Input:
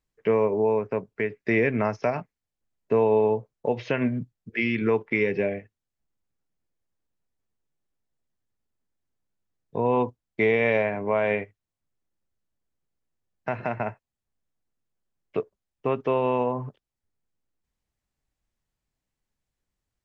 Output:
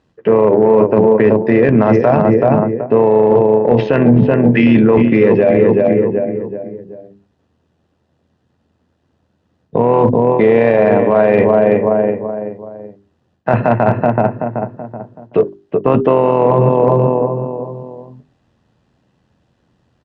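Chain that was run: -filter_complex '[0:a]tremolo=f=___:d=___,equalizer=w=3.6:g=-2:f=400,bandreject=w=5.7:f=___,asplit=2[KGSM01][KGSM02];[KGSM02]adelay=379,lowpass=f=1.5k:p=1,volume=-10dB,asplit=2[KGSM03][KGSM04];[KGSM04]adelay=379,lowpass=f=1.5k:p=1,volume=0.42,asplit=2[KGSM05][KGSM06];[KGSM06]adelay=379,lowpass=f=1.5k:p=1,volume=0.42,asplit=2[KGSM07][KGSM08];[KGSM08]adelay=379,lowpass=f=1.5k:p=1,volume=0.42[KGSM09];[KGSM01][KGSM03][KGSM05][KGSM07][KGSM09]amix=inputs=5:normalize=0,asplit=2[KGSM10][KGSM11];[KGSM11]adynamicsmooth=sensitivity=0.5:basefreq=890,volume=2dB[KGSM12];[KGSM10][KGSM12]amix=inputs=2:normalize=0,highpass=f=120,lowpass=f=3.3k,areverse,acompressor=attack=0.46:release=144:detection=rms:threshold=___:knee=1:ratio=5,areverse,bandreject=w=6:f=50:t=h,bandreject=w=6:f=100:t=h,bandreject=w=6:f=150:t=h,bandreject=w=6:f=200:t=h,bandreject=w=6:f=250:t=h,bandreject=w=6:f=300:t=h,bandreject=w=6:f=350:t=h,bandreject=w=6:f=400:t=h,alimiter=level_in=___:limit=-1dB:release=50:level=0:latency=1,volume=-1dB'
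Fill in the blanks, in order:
83, 0.519, 2.2k, -29dB, 28dB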